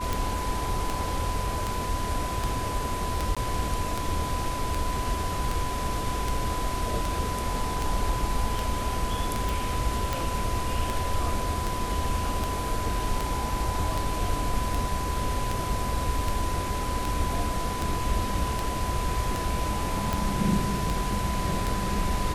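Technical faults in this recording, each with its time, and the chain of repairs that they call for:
tick 78 rpm
whine 1 kHz -32 dBFS
3.35–3.37 s: dropout 16 ms
9.49 s: pop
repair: de-click; band-stop 1 kHz, Q 30; interpolate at 3.35 s, 16 ms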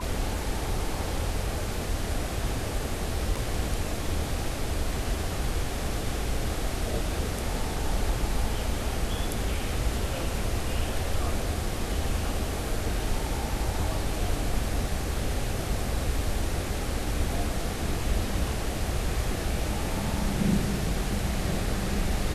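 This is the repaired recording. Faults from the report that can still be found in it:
nothing left

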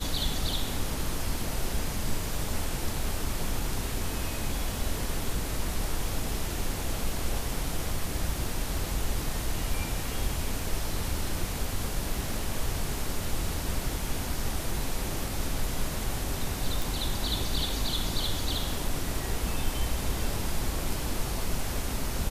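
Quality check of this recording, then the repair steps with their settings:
16.82 s: pop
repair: de-click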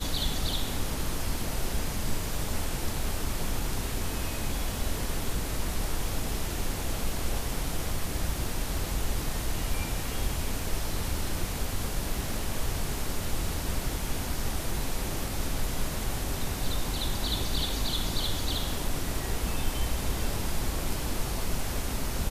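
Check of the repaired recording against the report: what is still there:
nothing left

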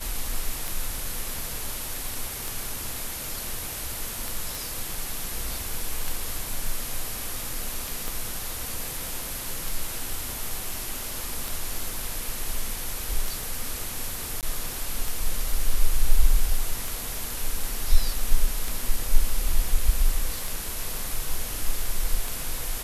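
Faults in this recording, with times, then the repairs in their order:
tick 33 1/3 rpm
4.55 s: pop
8.08 s: pop
14.41–14.43 s: dropout 18 ms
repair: de-click; interpolate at 14.41 s, 18 ms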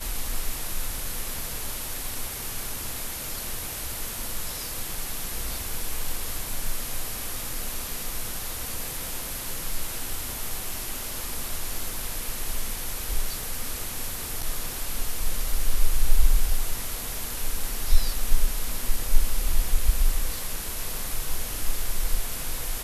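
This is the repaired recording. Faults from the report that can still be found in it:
8.08 s: pop

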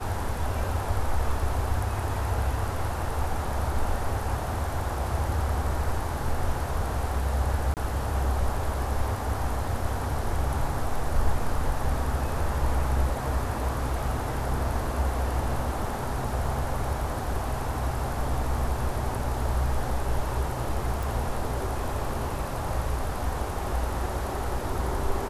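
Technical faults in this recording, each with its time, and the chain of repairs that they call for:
7.74–7.77 s: dropout 28 ms
21.03 s: pop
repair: de-click; interpolate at 7.74 s, 28 ms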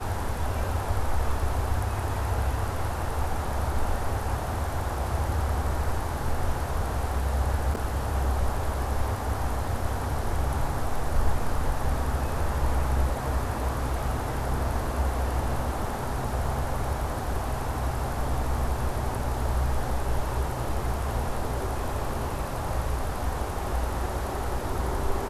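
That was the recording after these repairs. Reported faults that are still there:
nothing left

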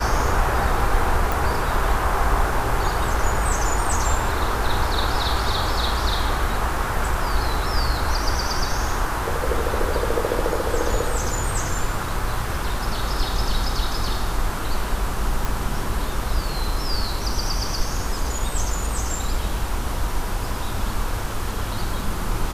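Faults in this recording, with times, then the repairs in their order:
1.32 s: pop
15.45 s: pop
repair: de-click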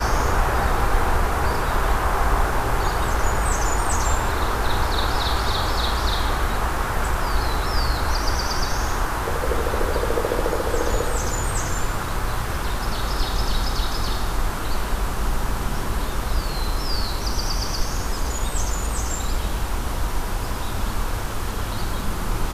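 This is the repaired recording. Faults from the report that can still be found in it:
nothing left

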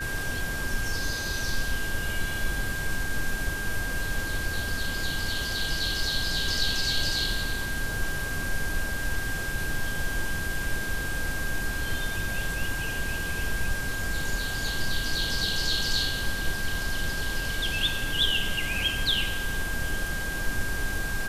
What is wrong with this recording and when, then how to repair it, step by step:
whine 1.6 kHz -32 dBFS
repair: band-stop 1.6 kHz, Q 30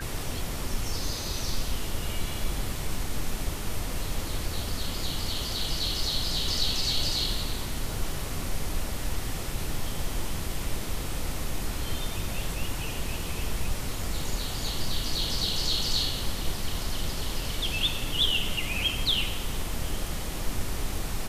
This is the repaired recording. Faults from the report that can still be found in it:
nothing left

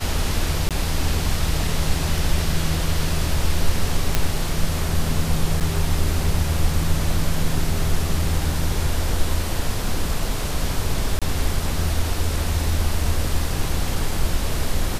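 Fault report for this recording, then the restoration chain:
0.69–0.71 s: dropout 17 ms
4.15 s: pop -3 dBFS
5.60–5.61 s: dropout 8.1 ms
11.19–11.22 s: dropout 26 ms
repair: de-click; interpolate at 0.69 s, 17 ms; interpolate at 5.60 s, 8.1 ms; interpolate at 11.19 s, 26 ms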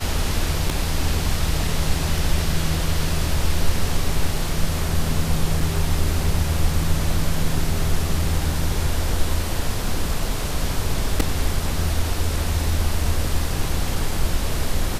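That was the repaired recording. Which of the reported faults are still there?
nothing left

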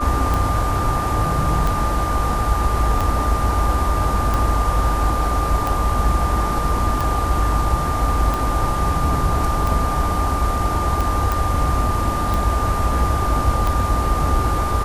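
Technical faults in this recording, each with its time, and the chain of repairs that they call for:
tick 45 rpm
whine 1.2 kHz -23 dBFS
11.32 s: pop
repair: de-click; band-stop 1.2 kHz, Q 30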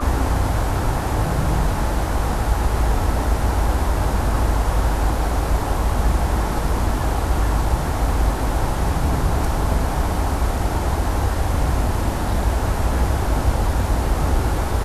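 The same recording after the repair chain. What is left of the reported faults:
nothing left

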